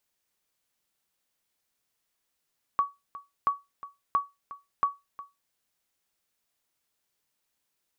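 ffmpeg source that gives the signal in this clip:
ffmpeg -f lavfi -i "aevalsrc='0.158*(sin(2*PI*1130*mod(t,0.68))*exp(-6.91*mod(t,0.68)/0.21)+0.141*sin(2*PI*1130*max(mod(t,0.68)-0.36,0))*exp(-6.91*max(mod(t,0.68)-0.36,0)/0.21))':duration=2.72:sample_rate=44100" out.wav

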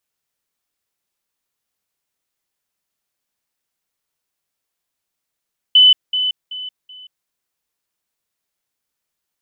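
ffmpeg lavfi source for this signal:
ffmpeg -f lavfi -i "aevalsrc='pow(10,(-5.5-10*floor(t/0.38))/20)*sin(2*PI*3010*t)*clip(min(mod(t,0.38),0.18-mod(t,0.38))/0.005,0,1)':duration=1.52:sample_rate=44100" out.wav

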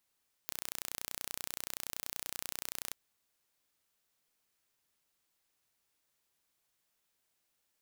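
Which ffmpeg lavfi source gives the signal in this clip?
ffmpeg -f lavfi -i "aevalsrc='0.282*eq(mod(n,1446),0)':duration=2.44:sample_rate=44100" out.wav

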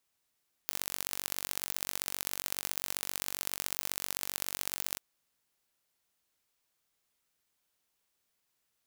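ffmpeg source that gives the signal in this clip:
ffmpeg -f lavfi -i "aevalsrc='0.562*eq(mod(n,930),0)*(0.5+0.5*eq(mod(n,2790),0))':duration=4.3:sample_rate=44100" out.wav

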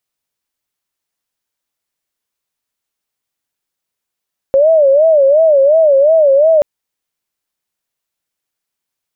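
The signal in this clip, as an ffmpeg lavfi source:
ffmpeg -f lavfi -i "aevalsrc='0.531*sin(2*PI*(596*t-57/(2*PI*2.8)*sin(2*PI*2.8*t)))':duration=2.08:sample_rate=44100" out.wav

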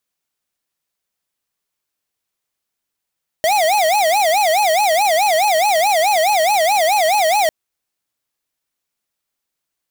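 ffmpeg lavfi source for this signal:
ffmpeg -f lavfi -i "aevalsrc='0.188*(2*lt(mod((736.5*t-113.5/(2*PI*4.7)*sin(2*PI*4.7*t)),1),0.5)-1)':duration=4.05:sample_rate=44100" out.wav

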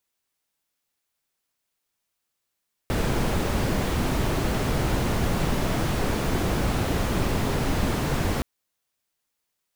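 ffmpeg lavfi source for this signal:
ffmpeg -f lavfi -i "anoisesrc=color=brown:amplitude=0.313:duration=5.52:sample_rate=44100:seed=1" out.wav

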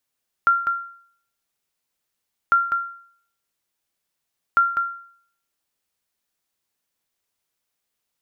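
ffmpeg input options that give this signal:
ffmpeg -f lavfi -i "aevalsrc='0.335*(sin(2*PI*1380*mod(t,2.05))*exp(-6.91*mod(t,2.05)/0.57)+0.422*sin(2*PI*1380*max(mod(t,2.05)-0.2,0))*exp(-6.91*max(mod(t,2.05)-0.2,0)/0.57))':duration=6.15:sample_rate=44100" out.wav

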